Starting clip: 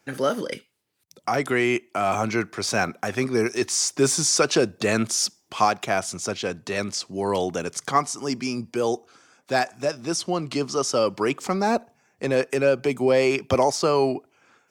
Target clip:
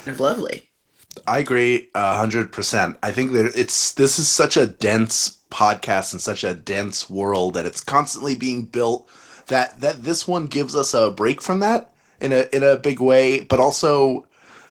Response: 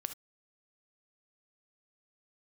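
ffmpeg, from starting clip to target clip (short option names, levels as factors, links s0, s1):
-filter_complex "[0:a]acompressor=mode=upward:threshold=0.0251:ratio=2.5,asplit=2[s0][s1];[s1]adelay=27,volume=0.251[s2];[s0][s2]amix=inputs=2:normalize=0,asplit=2[s3][s4];[1:a]atrim=start_sample=2205[s5];[s4][s5]afir=irnorm=-1:irlink=0,volume=0.224[s6];[s3][s6]amix=inputs=2:normalize=0,volume=1.41" -ar 48000 -c:a libopus -b:a 16k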